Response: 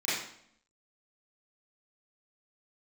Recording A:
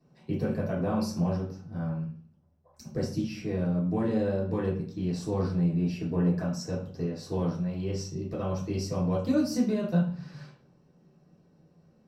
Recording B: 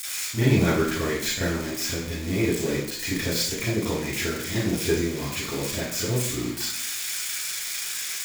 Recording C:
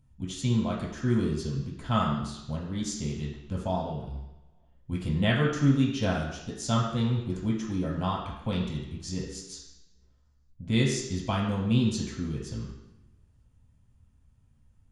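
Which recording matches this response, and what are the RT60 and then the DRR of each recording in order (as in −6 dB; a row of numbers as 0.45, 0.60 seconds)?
B; 0.45, 0.65, 0.95 seconds; −7.5, −12.5, −3.0 decibels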